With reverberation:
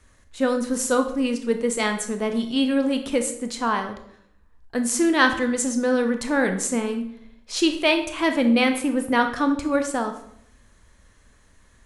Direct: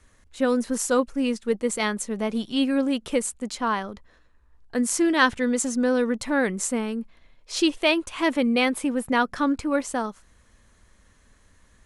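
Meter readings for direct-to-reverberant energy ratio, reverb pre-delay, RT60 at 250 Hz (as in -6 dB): 6.0 dB, 21 ms, 0.85 s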